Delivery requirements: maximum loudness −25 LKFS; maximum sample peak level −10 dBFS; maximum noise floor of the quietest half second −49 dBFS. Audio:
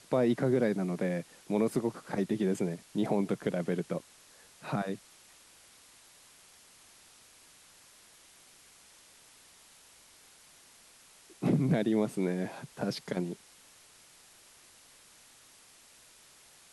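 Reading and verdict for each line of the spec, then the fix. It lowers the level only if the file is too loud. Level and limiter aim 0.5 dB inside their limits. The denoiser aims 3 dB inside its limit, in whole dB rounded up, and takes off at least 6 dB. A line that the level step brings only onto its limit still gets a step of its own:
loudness −32.0 LKFS: in spec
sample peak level −16.5 dBFS: in spec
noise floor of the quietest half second −58 dBFS: in spec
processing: no processing needed

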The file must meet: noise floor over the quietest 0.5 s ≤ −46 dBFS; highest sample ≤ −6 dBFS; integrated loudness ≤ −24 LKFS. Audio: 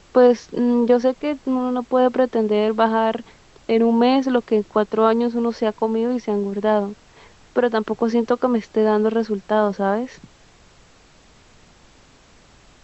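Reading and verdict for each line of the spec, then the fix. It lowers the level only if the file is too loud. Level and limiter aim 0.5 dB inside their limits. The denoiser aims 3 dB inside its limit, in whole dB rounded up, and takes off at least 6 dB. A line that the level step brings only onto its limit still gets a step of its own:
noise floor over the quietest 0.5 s −51 dBFS: in spec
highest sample −4.0 dBFS: out of spec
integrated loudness −19.5 LKFS: out of spec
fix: level −5 dB

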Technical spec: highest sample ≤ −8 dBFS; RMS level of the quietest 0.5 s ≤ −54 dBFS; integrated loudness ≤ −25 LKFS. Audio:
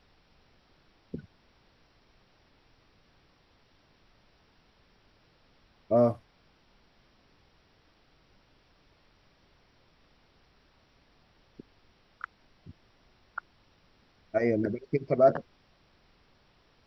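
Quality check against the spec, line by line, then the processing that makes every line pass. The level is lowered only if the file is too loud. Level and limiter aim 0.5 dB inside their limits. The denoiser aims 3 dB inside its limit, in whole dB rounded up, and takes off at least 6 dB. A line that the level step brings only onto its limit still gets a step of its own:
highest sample −10.5 dBFS: in spec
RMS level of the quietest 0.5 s −65 dBFS: in spec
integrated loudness −29.5 LKFS: in spec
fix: no processing needed

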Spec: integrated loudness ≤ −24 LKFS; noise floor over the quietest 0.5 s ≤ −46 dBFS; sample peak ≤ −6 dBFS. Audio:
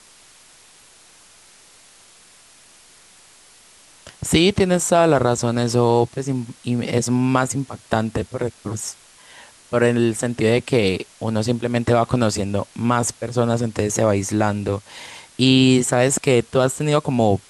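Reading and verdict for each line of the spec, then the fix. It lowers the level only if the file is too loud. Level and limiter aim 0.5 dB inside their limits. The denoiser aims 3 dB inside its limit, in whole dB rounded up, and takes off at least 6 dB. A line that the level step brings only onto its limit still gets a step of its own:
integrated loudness −19.5 LKFS: out of spec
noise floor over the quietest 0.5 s −49 dBFS: in spec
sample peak −4.0 dBFS: out of spec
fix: level −5 dB

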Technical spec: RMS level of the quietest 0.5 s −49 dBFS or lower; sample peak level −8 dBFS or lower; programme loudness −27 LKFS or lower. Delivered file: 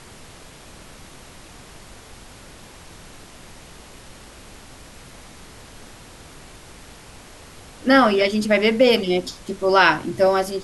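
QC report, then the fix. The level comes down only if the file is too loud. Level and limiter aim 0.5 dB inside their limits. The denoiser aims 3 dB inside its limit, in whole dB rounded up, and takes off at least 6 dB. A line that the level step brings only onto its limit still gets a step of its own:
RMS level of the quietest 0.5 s −43 dBFS: out of spec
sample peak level −4.5 dBFS: out of spec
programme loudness −18.0 LKFS: out of spec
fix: level −9.5 dB

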